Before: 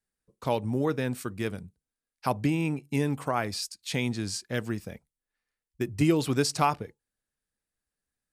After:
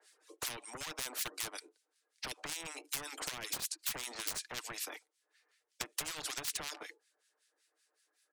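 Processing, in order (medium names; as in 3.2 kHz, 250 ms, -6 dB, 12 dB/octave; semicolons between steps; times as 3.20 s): low-pass 6.5 kHz 12 dB/octave; reverb removal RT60 2 s; steep high-pass 320 Hz 72 dB/octave; treble shelf 4.1 kHz +9 dB; comb 6.6 ms, depth 35%; peak limiter -20.5 dBFS, peak gain reduction 11.5 dB; compression 12:1, threshold -37 dBFS, peak gain reduction 13 dB; hard clipper -35.5 dBFS, distortion -15 dB; harmonic tremolo 5.3 Hz, depth 100%, crossover 1.5 kHz; spectrum-flattening compressor 10:1; trim +13 dB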